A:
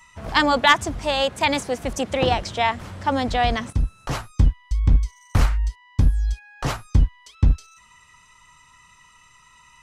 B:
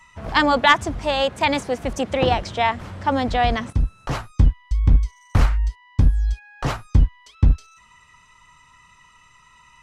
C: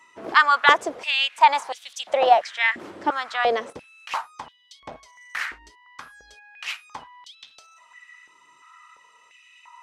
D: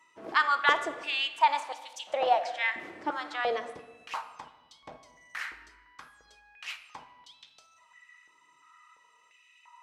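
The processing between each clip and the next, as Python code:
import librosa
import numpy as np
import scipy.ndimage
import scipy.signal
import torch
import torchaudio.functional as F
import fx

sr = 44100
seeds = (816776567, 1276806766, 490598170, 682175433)

y1 = fx.high_shelf(x, sr, hz=5000.0, db=-8.0)
y1 = y1 * librosa.db_to_amplitude(1.5)
y2 = fx.filter_held_highpass(y1, sr, hz=2.9, low_hz=340.0, high_hz=3500.0)
y2 = y2 * librosa.db_to_amplitude(-3.5)
y3 = fx.room_shoebox(y2, sr, seeds[0], volume_m3=1100.0, walls='mixed', distance_m=0.58)
y3 = y3 * librosa.db_to_amplitude(-8.5)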